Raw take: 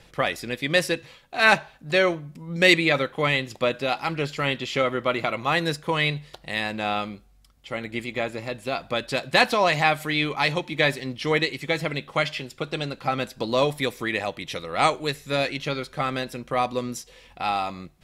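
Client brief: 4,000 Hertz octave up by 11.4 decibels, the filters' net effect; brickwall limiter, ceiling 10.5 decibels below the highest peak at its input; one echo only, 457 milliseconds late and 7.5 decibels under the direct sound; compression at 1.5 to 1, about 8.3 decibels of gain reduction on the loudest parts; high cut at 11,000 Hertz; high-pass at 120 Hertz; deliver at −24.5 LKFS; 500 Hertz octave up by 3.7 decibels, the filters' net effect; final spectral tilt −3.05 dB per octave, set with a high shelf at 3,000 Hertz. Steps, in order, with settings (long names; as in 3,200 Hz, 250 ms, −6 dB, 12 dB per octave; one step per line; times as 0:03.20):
high-pass filter 120 Hz
low-pass filter 11,000 Hz
parametric band 500 Hz +4 dB
high-shelf EQ 3,000 Hz +6 dB
parametric band 4,000 Hz +9 dB
downward compressor 1.5 to 1, threshold −29 dBFS
brickwall limiter −14 dBFS
single-tap delay 457 ms −7.5 dB
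level +2.5 dB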